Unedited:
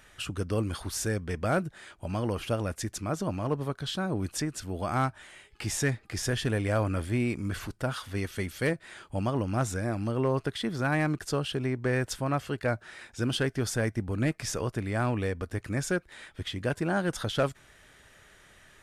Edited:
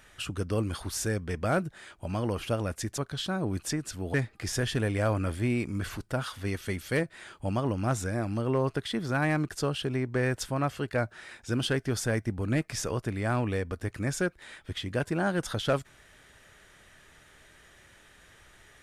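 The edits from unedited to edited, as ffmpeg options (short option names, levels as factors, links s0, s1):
-filter_complex "[0:a]asplit=3[s0][s1][s2];[s0]atrim=end=2.982[s3];[s1]atrim=start=3.668:end=4.832[s4];[s2]atrim=start=5.838[s5];[s3][s4]acrossfade=d=0.004:c1=hsin:c2=hsin[s6];[s6][s5]acrossfade=d=0.004:c1=hsin:c2=hsin"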